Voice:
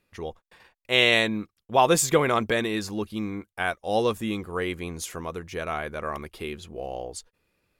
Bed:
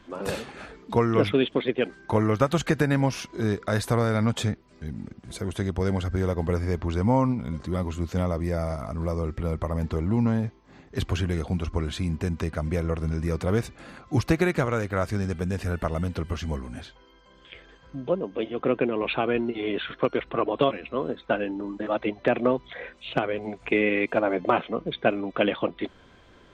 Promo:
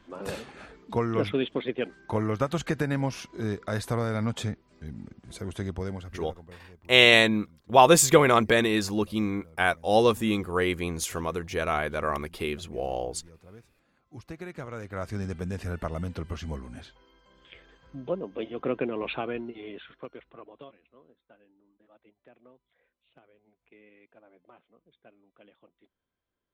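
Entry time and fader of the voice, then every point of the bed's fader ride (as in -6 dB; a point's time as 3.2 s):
6.00 s, +3.0 dB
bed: 5.73 s -5 dB
6.6 s -26 dB
13.88 s -26 dB
15.2 s -5 dB
19.07 s -5 dB
21.34 s -34 dB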